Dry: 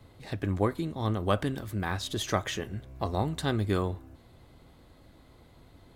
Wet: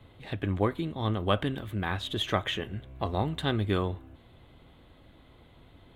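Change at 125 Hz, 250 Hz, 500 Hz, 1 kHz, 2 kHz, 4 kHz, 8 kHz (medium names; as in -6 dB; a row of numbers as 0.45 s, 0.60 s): 0.0 dB, 0.0 dB, 0.0 dB, +0.5 dB, +1.5 dB, +3.5 dB, -10.0 dB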